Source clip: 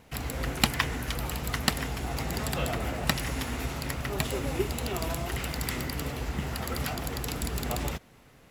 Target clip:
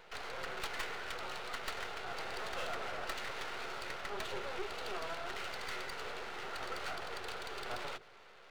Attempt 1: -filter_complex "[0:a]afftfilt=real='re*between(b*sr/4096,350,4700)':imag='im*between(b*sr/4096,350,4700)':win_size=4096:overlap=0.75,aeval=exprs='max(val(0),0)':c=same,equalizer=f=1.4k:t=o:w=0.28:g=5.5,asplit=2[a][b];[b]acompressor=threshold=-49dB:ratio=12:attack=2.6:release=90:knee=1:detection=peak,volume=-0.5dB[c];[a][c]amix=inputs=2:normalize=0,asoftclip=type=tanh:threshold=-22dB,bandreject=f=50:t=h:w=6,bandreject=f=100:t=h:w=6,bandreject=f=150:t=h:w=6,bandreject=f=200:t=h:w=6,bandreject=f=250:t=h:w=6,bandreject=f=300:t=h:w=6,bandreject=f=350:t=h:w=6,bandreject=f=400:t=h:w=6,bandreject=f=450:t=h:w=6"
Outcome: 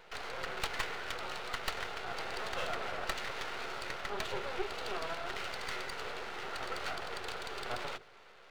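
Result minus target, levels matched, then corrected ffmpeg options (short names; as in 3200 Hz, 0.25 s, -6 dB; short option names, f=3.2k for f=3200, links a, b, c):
compressor: peak gain reduction -8 dB; soft clip: distortion -5 dB
-filter_complex "[0:a]afftfilt=real='re*between(b*sr/4096,350,4700)':imag='im*between(b*sr/4096,350,4700)':win_size=4096:overlap=0.75,aeval=exprs='max(val(0),0)':c=same,equalizer=f=1.4k:t=o:w=0.28:g=5.5,asplit=2[a][b];[b]acompressor=threshold=-57.5dB:ratio=12:attack=2.6:release=90:knee=1:detection=peak,volume=-0.5dB[c];[a][c]amix=inputs=2:normalize=0,asoftclip=type=tanh:threshold=-30dB,bandreject=f=50:t=h:w=6,bandreject=f=100:t=h:w=6,bandreject=f=150:t=h:w=6,bandreject=f=200:t=h:w=6,bandreject=f=250:t=h:w=6,bandreject=f=300:t=h:w=6,bandreject=f=350:t=h:w=6,bandreject=f=400:t=h:w=6,bandreject=f=450:t=h:w=6"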